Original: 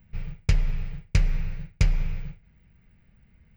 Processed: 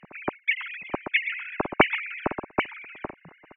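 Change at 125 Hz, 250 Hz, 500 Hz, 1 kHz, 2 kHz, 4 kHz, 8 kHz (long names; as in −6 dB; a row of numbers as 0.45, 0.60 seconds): −14.5 dB, +6.0 dB, +16.0 dB, +19.5 dB, +15.5 dB, +7.5 dB, can't be measured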